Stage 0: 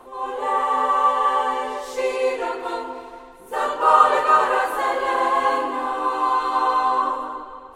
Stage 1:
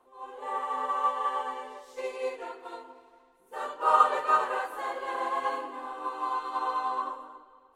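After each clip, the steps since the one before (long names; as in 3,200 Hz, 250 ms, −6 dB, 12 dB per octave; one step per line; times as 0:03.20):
low-shelf EQ 120 Hz −7.5 dB
expander for the loud parts 1.5 to 1, over −35 dBFS
level −6 dB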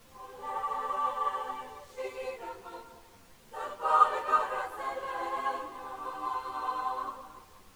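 background noise pink −55 dBFS
string-ensemble chorus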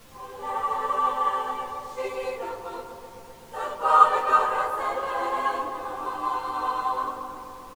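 double-tracking delay 20 ms −13.5 dB
delay with a low-pass on its return 128 ms, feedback 79%, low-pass 940 Hz, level −8 dB
level +6.5 dB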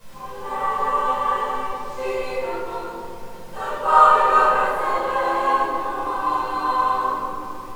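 rectangular room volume 650 cubic metres, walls mixed, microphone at 5.2 metres
level −5.5 dB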